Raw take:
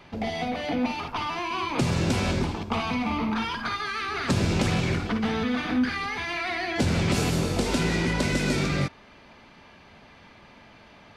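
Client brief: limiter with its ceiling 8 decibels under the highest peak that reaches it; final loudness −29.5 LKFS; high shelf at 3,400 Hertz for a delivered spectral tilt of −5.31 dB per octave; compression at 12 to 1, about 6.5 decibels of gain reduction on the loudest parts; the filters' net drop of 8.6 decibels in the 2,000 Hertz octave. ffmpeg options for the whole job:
ffmpeg -i in.wav -af "equalizer=frequency=2000:width_type=o:gain=-8.5,highshelf=frequency=3400:gain=-7.5,acompressor=threshold=-26dB:ratio=12,volume=5dB,alimiter=limit=-20.5dB:level=0:latency=1" out.wav

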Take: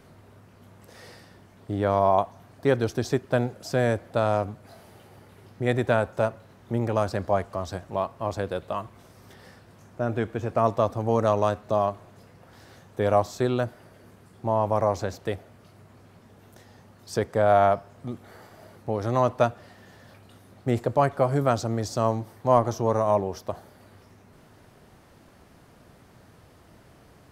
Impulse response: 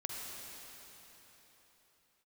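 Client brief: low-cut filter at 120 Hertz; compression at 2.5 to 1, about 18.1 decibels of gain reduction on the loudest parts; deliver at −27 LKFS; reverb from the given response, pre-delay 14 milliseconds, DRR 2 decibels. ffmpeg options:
-filter_complex "[0:a]highpass=120,acompressor=threshold=-44dB:ratio=2.5,asplit=2[link_01][link_02];[1:a]atrim=start_sample=2205,adelay=14[link_03];[link_02][link_03]afir=irnorm=-1:irlink=0,volume=-3dB[link_04];[link_01][link_04]amix=inputs=2:normalize=0,volume=14dB"

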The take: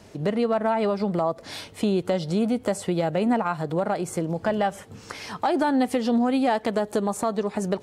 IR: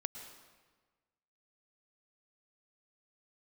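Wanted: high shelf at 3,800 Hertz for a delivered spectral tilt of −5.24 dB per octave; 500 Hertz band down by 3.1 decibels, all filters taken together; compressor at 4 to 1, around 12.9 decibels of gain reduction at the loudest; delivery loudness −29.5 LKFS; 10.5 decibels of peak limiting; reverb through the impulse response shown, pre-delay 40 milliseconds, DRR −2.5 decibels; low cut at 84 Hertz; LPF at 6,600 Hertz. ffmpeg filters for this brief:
-filter_complex "[0:a]highpass=84,lowpass=6600,equalizer=frequency=500:width_type=o:gain=-4,highshelf=frequency=3800:gain=-3.5,acompressor=threshold=-36dB:ratio=4,alimiter=level_in=7.5dB:limit=-24dB:level=0:latency=1,volume=-7.5dB,asplit=2[link_01][link_02];[1:a]atrim=start_sample=2205,adelay=40[link_03];[link_02][link_03]afir=irnorm=-1:irlink=0,volume=3.5dB[link_04];[link_01][link_04]amix=inputs=2:normalize=0,volume=7dB"

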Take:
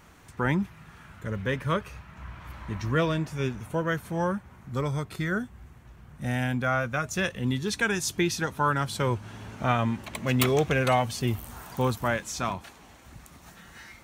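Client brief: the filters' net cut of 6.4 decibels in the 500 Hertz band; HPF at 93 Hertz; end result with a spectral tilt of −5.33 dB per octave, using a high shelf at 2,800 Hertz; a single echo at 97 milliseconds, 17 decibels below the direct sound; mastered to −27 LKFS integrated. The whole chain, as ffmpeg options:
ffmpeg -i in.wav -af "highpass=93,equalizer=frequency=500:width_type=o:gain=-8,highshelf=frequency=2800:gain=-4,aecho=1:1:97:0.141,volume=3.5dB" out.wav

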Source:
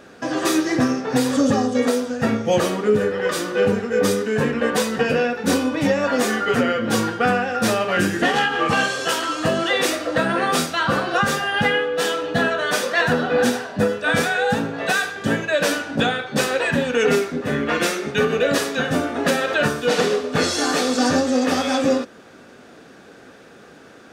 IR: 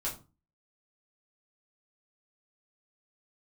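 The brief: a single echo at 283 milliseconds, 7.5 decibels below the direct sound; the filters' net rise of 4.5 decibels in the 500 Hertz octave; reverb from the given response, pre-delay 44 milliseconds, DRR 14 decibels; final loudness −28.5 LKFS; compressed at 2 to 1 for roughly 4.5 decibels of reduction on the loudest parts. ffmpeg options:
-filter_complex "[0:a]equalizer=frequency=500:width_type=o:gain=5,acompressor=threshold=-18dB:ratio=2,aecho=1:1:283:0.422,asplit=2[link_01][link_02];[1:a]atrim=start_sample=2205,adelay=44[link_03];[link_02][link_03]afir=irnorm=-1:irlink=0,volume=-17dB[link_04];[link_01][link_04]amix=inputs=2:normalize=0,volume=-9dB"

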